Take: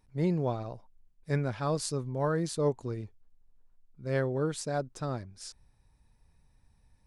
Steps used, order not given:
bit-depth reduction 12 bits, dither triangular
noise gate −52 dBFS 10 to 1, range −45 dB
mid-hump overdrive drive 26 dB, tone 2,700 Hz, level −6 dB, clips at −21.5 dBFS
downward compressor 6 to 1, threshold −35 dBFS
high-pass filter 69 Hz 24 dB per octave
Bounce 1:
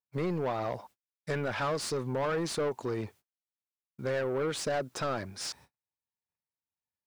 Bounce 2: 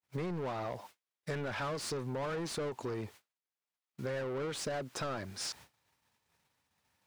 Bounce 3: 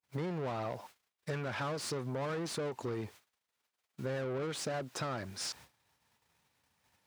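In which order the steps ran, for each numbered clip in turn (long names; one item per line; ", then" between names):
high-pass filter, then downward compressor, then mid-hump overdrive, then bit-depth reduction, then noise gate
high-pass filter, then bit-depth reduction, then mid-hump overdrive, then downward compressor, then noise gate
bit-depth reduction, then mid-hump overdrive, then downward compressor, then noise gate, then high-pass filter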